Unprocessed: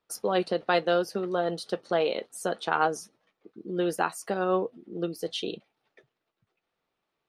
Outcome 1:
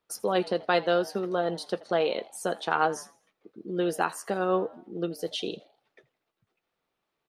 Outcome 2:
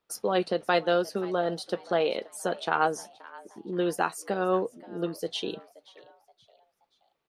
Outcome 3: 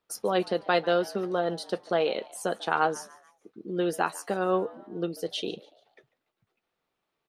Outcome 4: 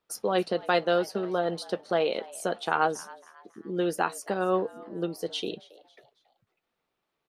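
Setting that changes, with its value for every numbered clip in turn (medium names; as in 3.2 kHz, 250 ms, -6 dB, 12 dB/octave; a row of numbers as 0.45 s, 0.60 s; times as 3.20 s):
frequency-shifting echo, time: 82 ms, 526 ms, 144 ms, 274 ms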